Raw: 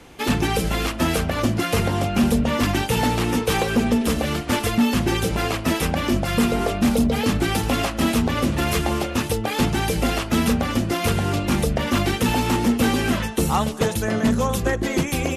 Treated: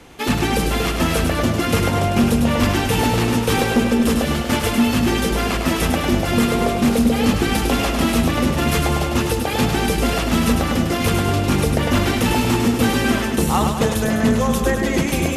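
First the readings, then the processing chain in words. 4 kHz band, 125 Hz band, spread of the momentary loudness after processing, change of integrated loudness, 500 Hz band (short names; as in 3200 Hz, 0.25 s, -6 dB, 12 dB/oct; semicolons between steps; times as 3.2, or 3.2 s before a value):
+3.0 dB, +3.0 dB, 2 LU, +3.0 dB, +3.0 dB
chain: split-band echo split 490 Hz, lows 0.232 s, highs 0.102 s, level -5 dB; gain +1.5 dB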